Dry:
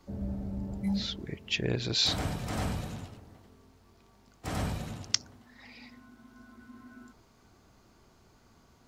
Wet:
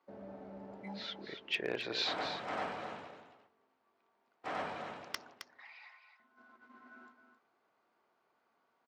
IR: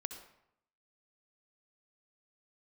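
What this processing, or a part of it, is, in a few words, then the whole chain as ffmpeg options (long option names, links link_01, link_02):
walkie-talkie: -filter_complex "[0:a]highpass=530,lowpass=2300,asoftclip=type=hard:threshold=-25.5dB,agate=range=-11dB:threshold=-59dB:ratio=16:detection=peak,asettb=1/sr,asplit=3[link_01][link_02][link_03];[link_01]atrim=end=5.474[link_04];[link_02]atrim=start=5.47:end=6.2,asetpts=PTS-STARTPTS,afade=type=in:duration=0.004:curve=qsin,afade=type=out:start_time=0.726:duration=0.004:curve=qsin,highpass=frequency=800:width=0.5412,highpass=frequency=800:width=1.3066[link_05];[link_03]atrim=start=6.196[link_06];[link_04][link_05]acrossfade=duration=0.004:curve1=hsin:curve2=qsin[link_07];[link_07][link_06]acrossfade=duration=0.004:curve1=qsin:curve2=hsin,aecho=1:1:266:0.355,volume=1.5dB"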